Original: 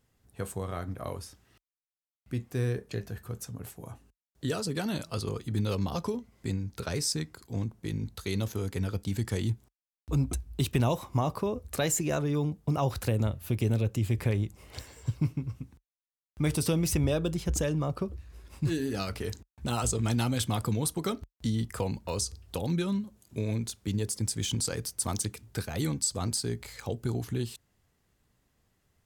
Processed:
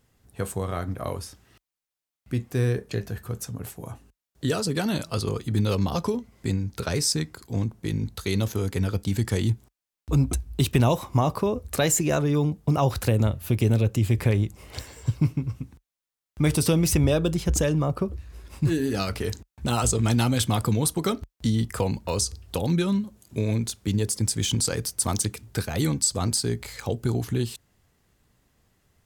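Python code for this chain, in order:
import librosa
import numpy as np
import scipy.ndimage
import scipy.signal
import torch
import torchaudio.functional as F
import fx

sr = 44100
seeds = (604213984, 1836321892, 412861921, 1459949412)

y = fx.dynamic_eq(x, sr, hz=4400.0, q=0.86, threshold_db=-53.0, ratio=4.0, max_db=-5, at=(17.8, 18.84))
y = y * 10.0 ** (6.0 / 20.0)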